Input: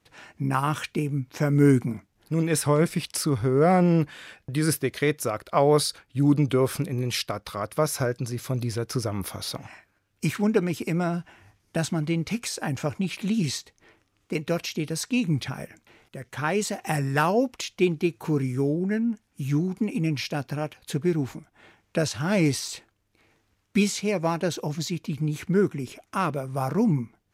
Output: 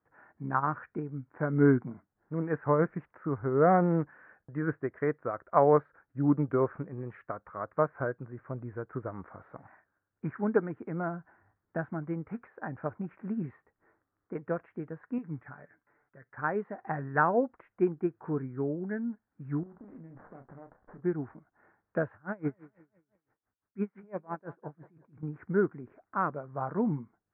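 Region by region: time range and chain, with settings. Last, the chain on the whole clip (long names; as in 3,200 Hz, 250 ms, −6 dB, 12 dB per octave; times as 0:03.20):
0:15.18–0:16.38: Chebyshev low-pass with heavy ripple 6,600 Hz, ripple 6 dB + comb filter 6.9 ms, depth 44%
0:19.63–0:21.04: downward compressor 12 to 1, threshold −33 dBFS + double-tracking delay 30 ms −7 dB + windowed peak hold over 17 samples
0:22.13–0:25.23: repeating echo 194 ms, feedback 42%, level −16.5 dB + tremolo with a sine in dB 5.9 Hz, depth 24 dB
whole clip: Butterworth low-pass 1,700 Hz 48 dB per octave; spectral tilt +2 dB per octave; expander for the loud parts 1.5 to 1, over −35 dBFS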